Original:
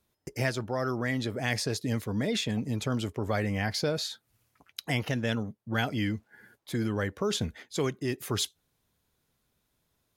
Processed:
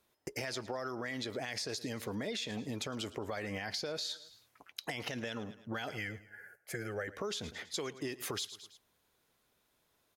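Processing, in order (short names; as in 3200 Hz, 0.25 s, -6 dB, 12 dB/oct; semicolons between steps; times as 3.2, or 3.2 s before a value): dynamic EQ 5200 Hz, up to +7 dB, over -47 dBFS, Q 0.8; 5.91–7.08 fixed phaser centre 1000 Hz, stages 6; on a send: feedback echo 0.108 s, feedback 41%, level -22 dB; on the sum: limiter -22 dBFS, peak gain reduction 11 dB; tone controls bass -11 dB, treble -3 dB; compressor, threshold -39 dBFS, peak gain reduction 10 dB; gain +3.5 dB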